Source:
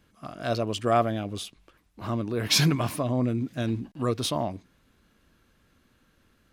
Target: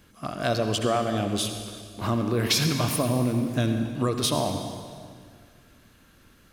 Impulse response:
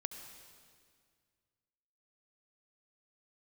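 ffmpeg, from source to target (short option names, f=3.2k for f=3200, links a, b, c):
-filter_complex "[0:a]highshelf=f=5.6k:g=5.5,acompressor=threshold=-28dB:ratio=6[a];[1:a]atrim=start_sample=2205[b];[a][b]afir=irnorm=-1:irlink=0,volume=9dB"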